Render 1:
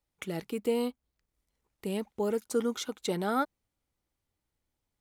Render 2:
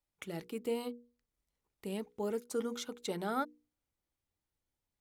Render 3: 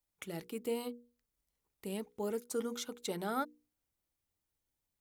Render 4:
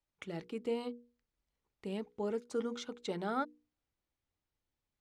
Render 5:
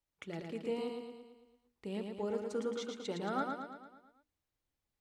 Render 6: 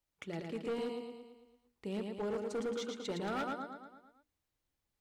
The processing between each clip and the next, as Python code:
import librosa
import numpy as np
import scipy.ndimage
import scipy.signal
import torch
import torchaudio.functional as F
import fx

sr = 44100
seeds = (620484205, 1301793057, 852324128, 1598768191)

y1 = fx.hum_notches(x, sr, base_hz=60, count=8)
y1 = y1 * librosa.db_to_amplitude(-5.5)
y2 = fx.high_shelf(y1, sr, hz=8000.0, db=7.5)
y2 = y2 * librosa.db_to_amplitude(-1.0)
y3 = fx.air_absorb(y2, sr, metres=120.0)
y3 = y3 * librosa.db_to_amplitude(1.0)
y4 = fx.echo_feedback(y3, sr, ms=112, feedback_pct=55, wet_db=-4.5)
y4 = y4 * librosa.db_to_amplitude(-1.5)
y5 = np.clip(y4, -10.0 ** (-34.0 / 20.0), 10.0 ** (-34.0 / 20.0))
y5 = y5 * librosa.db_to_amplitude(1.5)